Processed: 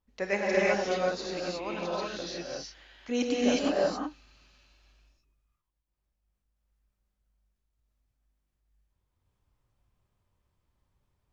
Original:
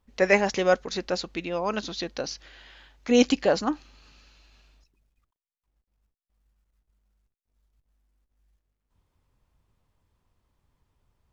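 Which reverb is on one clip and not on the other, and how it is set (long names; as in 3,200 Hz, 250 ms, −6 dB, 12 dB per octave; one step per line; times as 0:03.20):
reverb whose tail is shaped and stops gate 390 ms rising, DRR −5.5 dB
level −10.5 dB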